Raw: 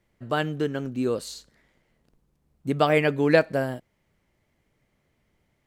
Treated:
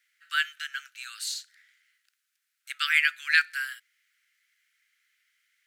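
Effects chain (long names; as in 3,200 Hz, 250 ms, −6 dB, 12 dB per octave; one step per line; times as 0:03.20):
Butterworth high-pass 1,400 Hz 72 dB per octave
level +6 dB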